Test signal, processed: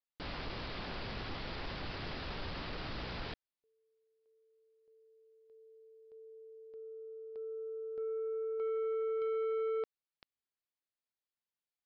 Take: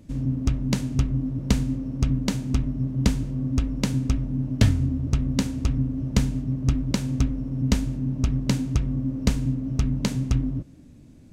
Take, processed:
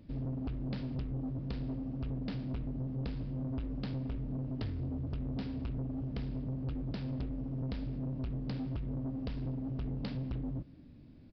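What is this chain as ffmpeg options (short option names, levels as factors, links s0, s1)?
-af "acompressor=threshold=0.0891:ratio=6,aresample=16000,asoftclip=type=tanh:threshold=0.0473,aresample=44100,aresample=11025,aresample=44100,volume=0.501"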